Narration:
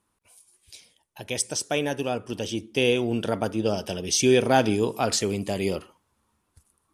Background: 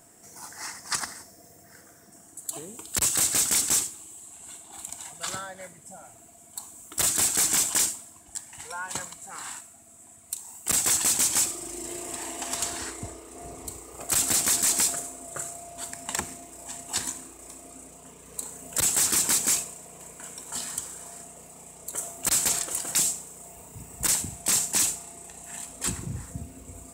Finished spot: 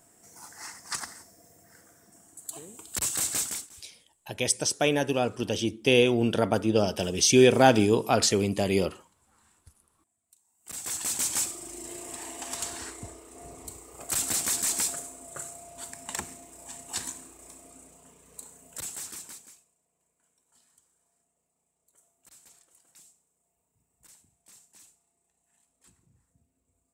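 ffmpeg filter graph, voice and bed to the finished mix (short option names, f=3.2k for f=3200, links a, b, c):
-filter_complex "[0:a]adelay=3100,volume=1.5dB[a];[1:a]volume=18.5dB,afade=t=out:st=3.38:d=0.31:silence=0.0707946,afade=t=in:st=10.57:d=0.71:silence=0.0668344,afade=t=out:st=17.43:d=2.11:silence=0.0421697[b];[a][b]amix=inputs=2:normalize=0"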